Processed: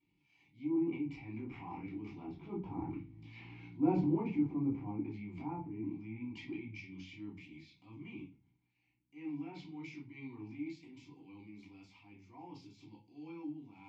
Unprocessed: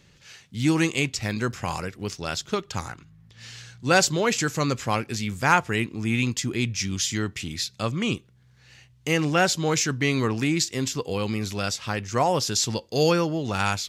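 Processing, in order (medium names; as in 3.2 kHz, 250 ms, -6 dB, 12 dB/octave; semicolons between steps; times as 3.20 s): Doppler pass-by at 3.35 s, 9 m/s, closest 3.1 m; low-pass that closes with the level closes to 650 Hz, closed at -36 dBFS; bass shelf 66 Hz +10 dB; transient shaper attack -9 dB, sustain +12 dB; vowel filter u; reverberation RT60 0.30 s, pre-delay 3 ms, DRR -4 dB; trim +4 dB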